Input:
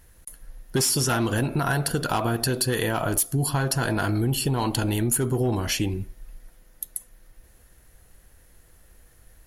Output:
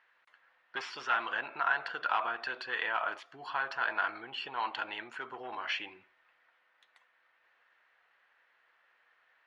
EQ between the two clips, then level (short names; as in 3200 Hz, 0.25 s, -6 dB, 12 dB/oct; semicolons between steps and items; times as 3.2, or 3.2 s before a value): Butterworth band-pass 1700 Hz, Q 0.83; air absorption 150 m; 0.0 dB